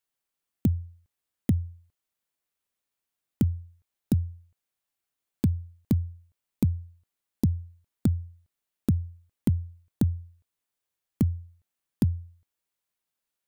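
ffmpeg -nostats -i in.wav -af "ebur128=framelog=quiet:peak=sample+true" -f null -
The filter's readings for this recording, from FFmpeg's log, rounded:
Integrated loudness:
  I:         -29.9 LUFS
  Threshold: -41.2 LUFS
Loudness range:
  LRA:         4.0 LU
  Threshold: -52.3 LUFS
  LRA low:   -34.6 LUFS
  LRA high:  -30.7 LUFS
Sample peak:
  Peak:      -12.0 dBFS
True peak:
  Peak:      -11.3 dBFS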